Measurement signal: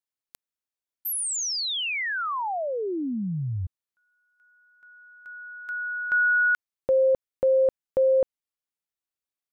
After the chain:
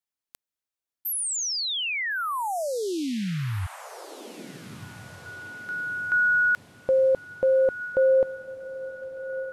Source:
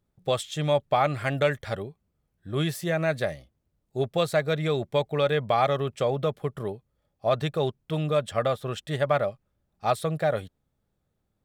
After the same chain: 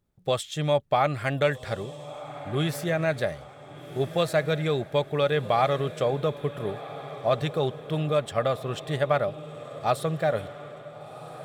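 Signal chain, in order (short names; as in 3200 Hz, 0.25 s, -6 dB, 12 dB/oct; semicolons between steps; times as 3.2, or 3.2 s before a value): diffused feedback echo 1.43 s, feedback 45%, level -14 dB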